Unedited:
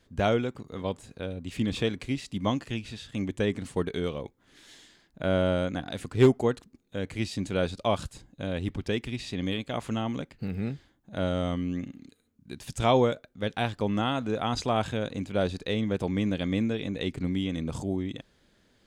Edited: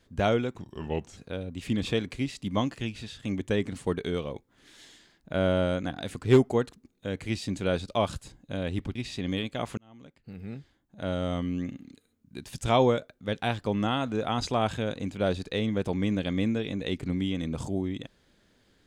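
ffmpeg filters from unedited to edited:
-filter_complex "[0:a]asplit=5[s0][s1][s2][s3][s4];[s0]atrim=end=0.564[s5];[s1]atrim=start=0.56:end=1.07,asetpts=PTS-STARTPTS,asetrate=36603,aresample=44100[s6];[s2]atrim=start=1.066:end=8.852[s7];[s3]atrim=start=9.098:end=9.92,asetpts=PTS-STARTPTS,afade=t=out:st=0.818:d=0.004:c=hsin[s8];[s4]atrim=start=9.92,asetpts=PTS-STARTPTS,afade=t=in:d=1.72[s9];[s5][s6]acrossfade=d=0.004:c1=hsin:c2=hsin[s10];[s10][s7]acrossfade=d=0.004:c1=hsin:c2=hsin[s11];[s8][s9]concat=n=2:v=0:a=1[s12];[s11][s12]acrossfade=d=0.004:c1=hsin:c2=hsin"

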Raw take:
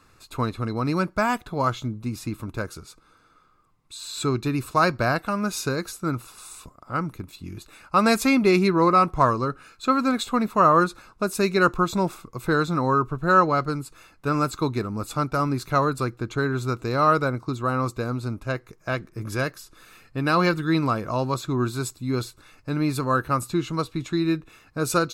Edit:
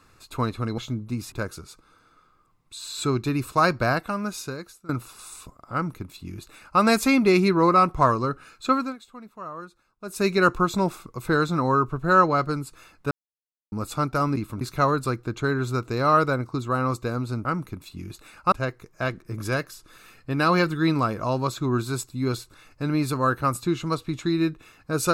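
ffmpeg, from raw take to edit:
-filter_complex "[0:a]asplit=12[s0][s1][s2][s3][s4][s5][s6][s7][s8][s9][s10][s11];[s0]atrim=end=0.782[s12];[s1]atrim=start=1.718:end=2.262[s13];[s2]atrim=start=2.508:end=6.08,asetpts=PTS-STARTPTS,afade=t=out:st=2.572:d=1:silence=0.0841395[s14];[s3]atrim=start=6.08:end=10.15,asetpts=PTS-STARTPTS,afade=t=in:d=0.004:c=hsin:silence=0.0841395,afade=t=out:st=3.82:d=0.25:silence=0.1[s15];[s4]atrim=start=10.15:end=11.2,asetpts=PTS-STARTPTS,volume=0.1[s16];[s5]atrim=start=11.2:end=14.3,asetpts=PTS-STARTPTS,afade=t=in:d=0.25:silence=0.1,afade=t=out:st=3.096:d=0.004:c=hsin[s17];[s6]atrim=start=14.3:end=14.91,asetpts=PTS-STARTPTS,volume=0[s18];[s7]atrim=start=14.91:end=15.552,asetpts=PTS-STARTPTS,afade=t=in:d=0.004:c=hsin[s19];[s8]atrim=start=2.258:end=2.512[s20];[s9]atrim=start=15.548:end=18.392[s21];[s10]atrim=start=6.918:end=7.992[s22];[s11]atrim=start=18.388[s23];[s12][s13]acrossfade=d=0.004:c1=hsin:c2=hsin[s24];[s14][s15][s16][s17][s18][s19]concat=n=6:v=0:a=1[s25];[s24][s25]acrossfade=d=0.004:c1=hsin:c2=hsin[s26];[s26][s20]acrossfade=d=0.004:c1=hsin:c2=hsin[s27];[s27][s21]acrossfade=d=0.004:c1=hsin:c2=hsin[s28];[s28][s22]acrossfade=d=0.004:c1=hsin:c2=hsin[s29];[s29][s23]acrossfade=d=0.004:c1=hsin:c2=hsin"

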